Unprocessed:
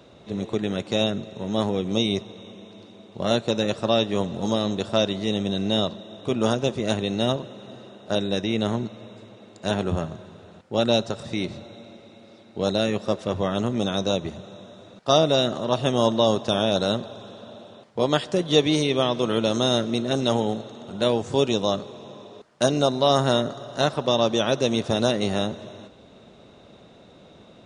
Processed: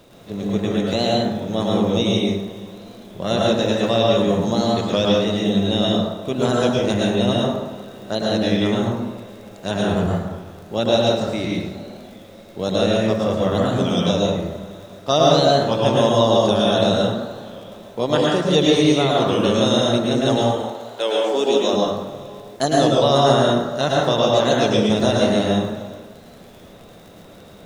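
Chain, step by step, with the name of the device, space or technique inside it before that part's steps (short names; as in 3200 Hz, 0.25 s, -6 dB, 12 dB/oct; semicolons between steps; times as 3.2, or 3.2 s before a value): warped LP (record warp 33 1/3 rpm, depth 160 cents; crackle 25/s -35 dBFS; pink noise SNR 34 dB); 20.41–21.72 HPF 720 Hz -> 190 Hz 24 dB/oct; plate-style reverb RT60 1 s, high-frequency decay 0.5×, pre-delay 95 ms, DRR -3.5 dB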